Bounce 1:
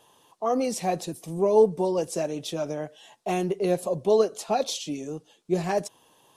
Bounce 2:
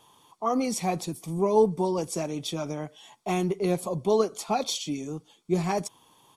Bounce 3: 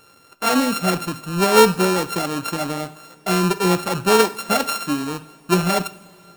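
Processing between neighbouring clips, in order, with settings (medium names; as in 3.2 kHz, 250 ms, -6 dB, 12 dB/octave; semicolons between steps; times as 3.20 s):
comb 0.9 ms, depth 47%
sorted samples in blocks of 32 samples; two-slope reverb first 0.42 s, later 4 s, from -21 dB, DRR 10.5 dB; trim +7.5 dB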